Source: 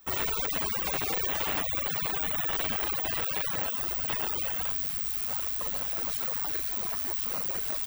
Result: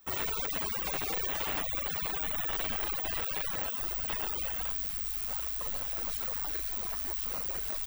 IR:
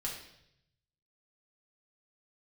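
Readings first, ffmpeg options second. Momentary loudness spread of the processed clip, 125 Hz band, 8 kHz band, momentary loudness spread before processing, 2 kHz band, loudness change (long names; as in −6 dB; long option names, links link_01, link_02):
1 LU, −3.5 dB, −3.5 dB, 2 LU, −3.5 dB, −3.5 dB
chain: -filter_complex "[0:a]asubboost=boost=4:cutoff=50,asplit=2[link_01][link_02];[1:a]atrim=start_sample=2205,atrim=end_sample=3528,adelay=22[link_03];[link_02][link_03]afir=irnorm=-1:irlink=0,volume=-21.5dB[link_04];[link_01][link_04]amix=inputs=2:normalize=0,volume=-3.5dB"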